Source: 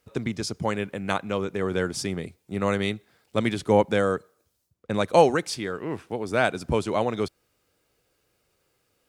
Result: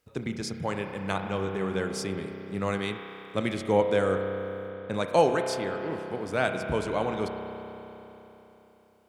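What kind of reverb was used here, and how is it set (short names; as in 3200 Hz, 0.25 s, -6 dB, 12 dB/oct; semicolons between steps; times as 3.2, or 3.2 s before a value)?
spring tank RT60 3.6 s, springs 31 ms, chirp 80 ms, DRR 4.5 dB; gain -4.5 dB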